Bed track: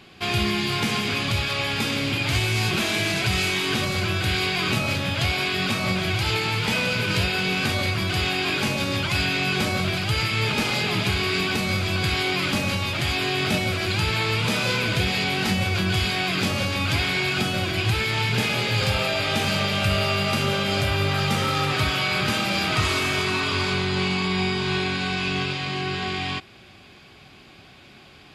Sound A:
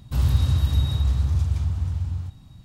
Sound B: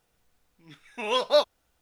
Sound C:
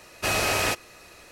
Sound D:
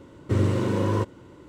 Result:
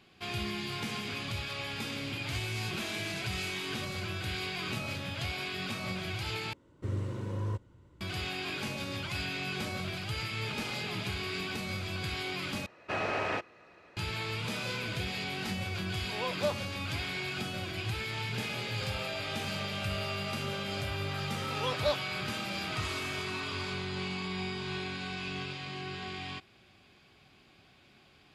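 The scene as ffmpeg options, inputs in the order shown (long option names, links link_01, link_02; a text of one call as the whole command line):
ffmpeg -i bed.wav -i cue0.wav -i cue1.wav -i cue2.wav -i cue3.wav -filter_complex "[2:a]asplit=2[link_01][link_02];[0:a]volume=-12.5dB[link_03];[4:a]asubboost=boost=10.5:cutoff=130[link_04];[3:a]highpass=110,lowpass=2200[link_05];[link_01]acrossover=split=2900[link_06][link_07];[link_07]acompressor=threshold=-45dB:ratio=4:attack=1:release=60[link_08];[link_06][link_08]amix=inputs=2:normalize=0[link_09];[link_03]asplit=3[link_10][link_11][link_12];[link_10]atrim=end=6.534[link_13];[link_04]atrim=end=1.48,asetpts=PTS-STARTPTS,volume=-14.5dB[link_14];[link_11]atrim=start=8.006:end=12.664[link_15];[link_05]atrim=end=1.31,asetpts=PTS-STARTPTS,volume=-5.5dB[link_16];[link_12]atrim=start=13.966[link_17];[link_09]atrim=end=1.81,asetpts=PTS-STARTPTS,volume=-10.5dB,afade=type=in:duration=0.004:curve=hsin,afade=type=out:start_time=1.806:duration=0.004:curve=hsin,adelay=15100[link_18];[link_02]atrim=end=1.81,asetpts=PTS-STARTPTS,volume=-9.5dB,afade=type=in:duration=0.004:curve=hsin,afade=type=out:start_time=1.806:duration=0.004:curve=hsin,adelay=904932S[link_19];[link_13][link_14]acrossfade=duration=0.004:curve1=hsin:curve2=hsin[link_20];[link_20][link_15]acrossfade=duration=0.004:curve1=hsin:curve2=hsin[link_21];[link_21][link_16]acrossfade=duration=0.004:curve1=hsin:curve2=hsin[link_22];[link_22][link_17]acrossfade=duration=0.004:curve1=hsin:curve2=hsin[link_23];[link_23][link_18][link_19]amix=inputs=3:normalize=0" out.wav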